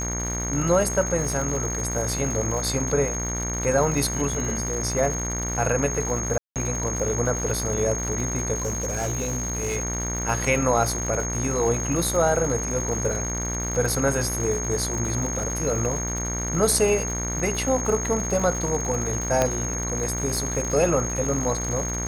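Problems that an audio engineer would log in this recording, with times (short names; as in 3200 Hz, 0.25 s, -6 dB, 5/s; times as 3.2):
buzz 60 Hz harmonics 39 -30 dBFS
crackle 210/s -30 dBFS
tone 6500 Hz -29 dBFS
6.38–6.56 gap 0.178 s
8.55–9.77 clipped -22.5 dBFS
19.42 pop -7 dBFS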